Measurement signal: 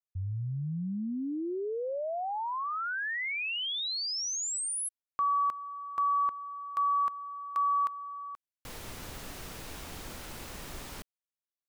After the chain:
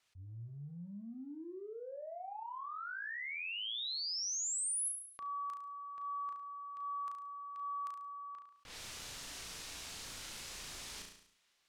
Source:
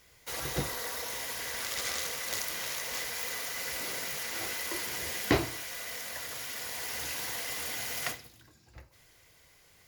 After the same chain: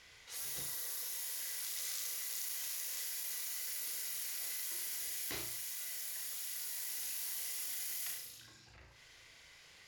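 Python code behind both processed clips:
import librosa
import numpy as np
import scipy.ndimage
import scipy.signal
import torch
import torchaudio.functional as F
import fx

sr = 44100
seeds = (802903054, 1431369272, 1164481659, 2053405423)

y = librosa.effects.preemphasis(x, coef=0.9, zi=[0.0])
y = fx.transient(y, sr, attack_db=-11, sustain_db=1)
y = fx.env_lowpass(y, sr, base_hz=2800.0, full_db=-36.0)
y = fx.room_flutter(y, sr, wall_m=6.0, rt60_s=0.35)
y = fx.env_flatten(y, sr, amount_pct=50)
y = y * 10.0 ** (-5.0 / 20.0)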